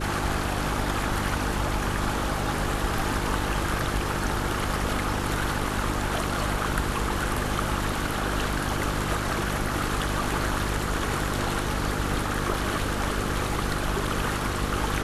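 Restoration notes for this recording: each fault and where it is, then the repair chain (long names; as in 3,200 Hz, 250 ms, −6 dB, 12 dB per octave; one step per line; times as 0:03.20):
mains hum 50 Hz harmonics 7 −31 dBFS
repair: hum removal 50 Hz, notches 7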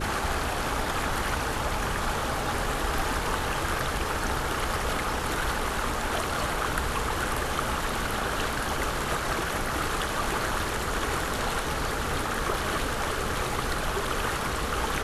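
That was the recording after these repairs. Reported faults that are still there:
none of them is left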